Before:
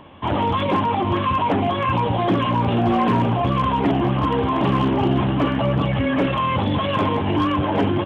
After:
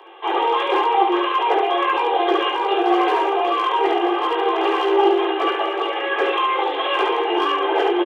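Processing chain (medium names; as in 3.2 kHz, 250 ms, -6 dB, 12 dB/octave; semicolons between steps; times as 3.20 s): steep high-pass 340 Hz 96 dB/octave; comb 2.5 ms, depth 80%; on a send: early reflections 18 ms -6 dB, 71 ms -3.5 dB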